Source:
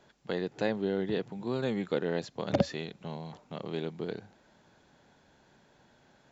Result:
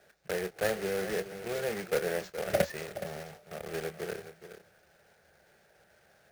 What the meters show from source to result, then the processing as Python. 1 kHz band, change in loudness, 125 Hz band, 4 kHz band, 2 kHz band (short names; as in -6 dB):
+0.5 dB, -0.5 dB, -6.0 dB, 0.0 dB, +4.5 dB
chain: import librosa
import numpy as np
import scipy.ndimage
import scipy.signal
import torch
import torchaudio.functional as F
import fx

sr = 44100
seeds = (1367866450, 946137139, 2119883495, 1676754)

y = fx.block_float(x, sr, bits=3)
y = scipy.signal.sosfilt(scipy.signal.butter(2, 63.0, 'highpass', fs=sr, output='sos'), y)
y = fx.peak_eq(y, sr, hz=120.0, db=-8.0, octaves=0.6)
y = fx.fixed_phaser(y, sr, hz=1000.0, stages=6)
y = fx.doubler(y, sr, ms=27.0, db=-11)
y = y + 10.0 ** (-12.0 / 20.0) * np.pad(y, (int(420 * sr / 1000.0), 0))[:len(y)]
y = np.repeat(y[::4], 4)[:len(y)]
y = y * librosa.db_to_amplitude(2.0)